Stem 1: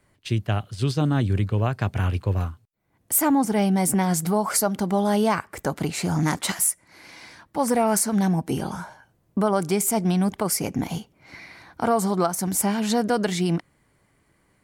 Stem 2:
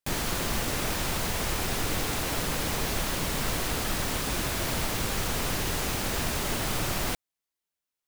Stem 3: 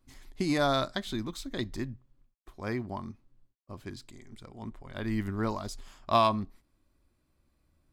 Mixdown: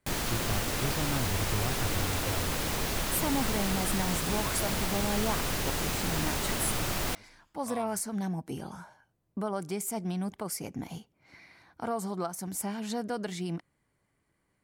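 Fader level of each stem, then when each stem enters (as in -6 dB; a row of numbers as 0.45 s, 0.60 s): -11.5 dB, -2.0 dB, -20.0 dB; 0.00 s, 0.00 s, 1.55 s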